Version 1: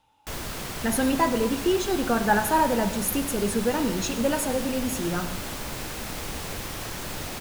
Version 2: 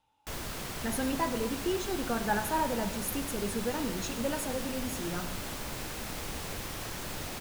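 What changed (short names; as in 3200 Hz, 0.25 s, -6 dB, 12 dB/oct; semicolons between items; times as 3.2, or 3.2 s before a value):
speech -8.5 dB; background -4.5 dB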